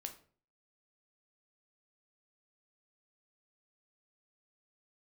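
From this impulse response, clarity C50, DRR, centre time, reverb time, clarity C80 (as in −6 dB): 12.0 dB, 5.0 dB, 10 ms, 0.45 s, 17.0 dB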